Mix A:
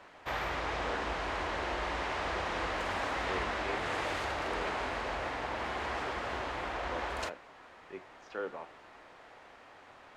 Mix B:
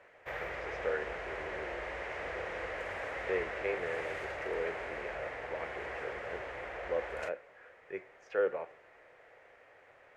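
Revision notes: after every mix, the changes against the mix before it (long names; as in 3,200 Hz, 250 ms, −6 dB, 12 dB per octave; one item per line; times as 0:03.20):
background −9.5 dB
master: add graphic EQ with 10 bands 125 Hz +4 dB, 250 Hz −8 dB, 500 Hz +12 dB, 1,000 Hz −5 dB, 2,000 Hz +10 dB, 4,000 Hz −7 dB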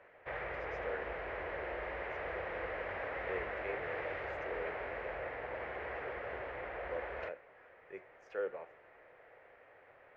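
speech −7.5 dB
background: add Gaussian smoothing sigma 2.5 samples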